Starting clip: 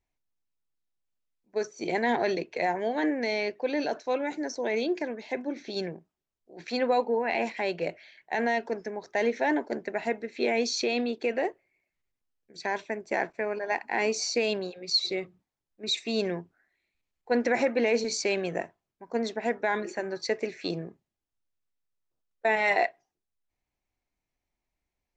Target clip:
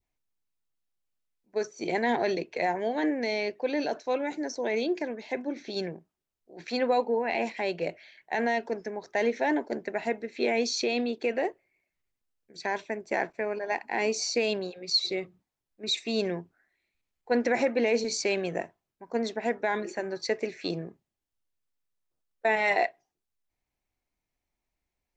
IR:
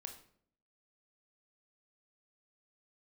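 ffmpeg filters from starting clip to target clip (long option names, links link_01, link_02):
-af "adynamicequalizer=threshold=0.00794:dfrequency=1400:dqfactor=1.3:tfrequency=1400:tqfactor=1.3:attack=5:release=100:ratio=0.375:range=2:mode=cutabove:tftype=bell"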